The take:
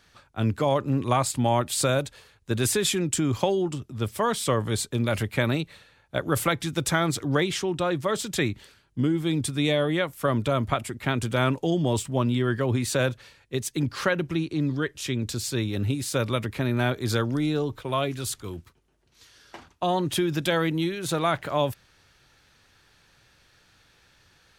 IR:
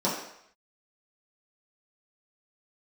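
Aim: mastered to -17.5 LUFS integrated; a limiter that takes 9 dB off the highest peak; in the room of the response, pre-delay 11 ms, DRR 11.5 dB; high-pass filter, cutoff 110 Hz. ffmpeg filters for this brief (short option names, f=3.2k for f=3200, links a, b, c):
-filter_complex "[0:a]highpass=110,alimiter=limit=-17.5dB:level=0:latency=1,asplit=2[a][b];[1:a]atrim=start_sample=2205,adelay=11[c];[b][c]afir=irnorm=-1:irlink=0,volume=-23.5dB[d];[a][d]amix=inputs=2:normalize=0,volume=10.5dB"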